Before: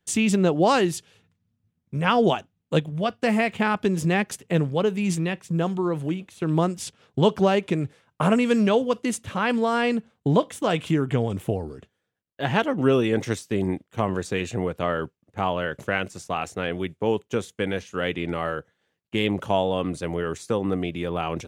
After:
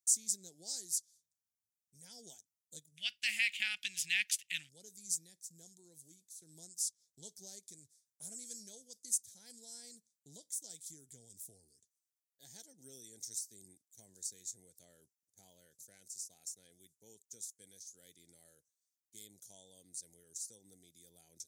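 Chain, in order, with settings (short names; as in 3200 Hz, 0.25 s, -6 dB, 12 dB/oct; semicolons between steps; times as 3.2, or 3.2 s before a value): inverse Chebyshev high-pass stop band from 3000 Hz, stop band 40 dB, from 2.96 s stop band from 1200 Hz, from 4.68 s stop band from 3000 Hz; gain +1 dB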